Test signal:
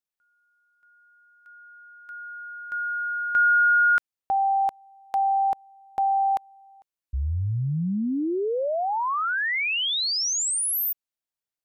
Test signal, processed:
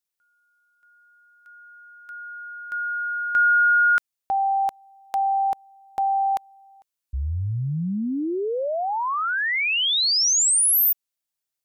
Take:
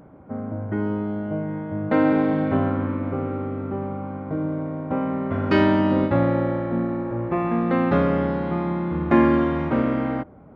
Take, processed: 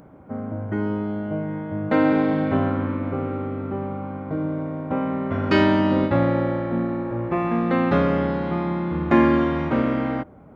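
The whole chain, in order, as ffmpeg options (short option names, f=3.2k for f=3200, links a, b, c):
-af "highshelf=f=3.2k:g=7.5"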